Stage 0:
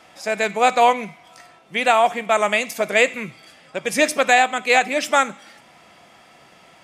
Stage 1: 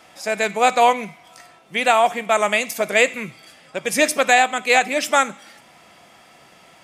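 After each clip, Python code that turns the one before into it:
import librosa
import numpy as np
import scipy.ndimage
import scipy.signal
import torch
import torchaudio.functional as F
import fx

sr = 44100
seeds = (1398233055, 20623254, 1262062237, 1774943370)

y = fx.high_shelf(x, sr, hz=8300.0, db=6.5)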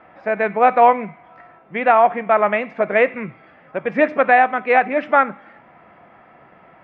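y = scipy.signal.sosfilt(scipy.signal.butter(4, 1900.0, 'lowpass', fs=sr, output='sos'), x)
y = F.gain(torch.from_numpy(y), 3.0).numpy()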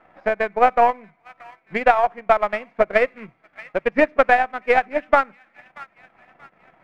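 y = np.where(x < 0.0, 10.0 ** (-3.0 / 20.0) * x, x)
y = fx.echo_wet_highpass(y, sr, ms=631, feedback_pct=40, hz=1800.0, wet_db=-14)
y = fx.transient(y, sr, attack_db=10, sustain_db=-10)
y = F.gain(torch.from_numpy(y), -6.0).numpy()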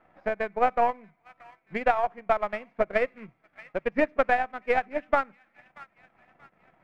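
y = fx.low_shelf(x, sr, hz=280.0, db=5.5)
y = F.gain(torch.from_numpy(y), -8.5).numpy()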